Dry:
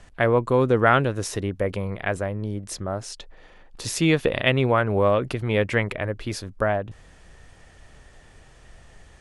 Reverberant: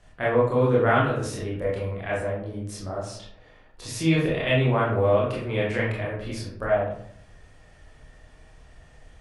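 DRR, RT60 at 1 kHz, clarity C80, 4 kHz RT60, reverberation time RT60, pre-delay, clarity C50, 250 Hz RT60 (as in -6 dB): -6.5 dB, 0.60 s, 7.0 dB, 0.35 s, 0.65 s, 21 ms, 2.5 dB, 0.80 s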